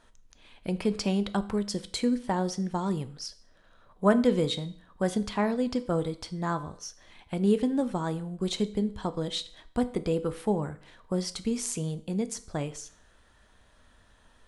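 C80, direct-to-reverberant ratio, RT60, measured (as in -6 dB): 20.0 dB, 11.0 dB, 0.55 s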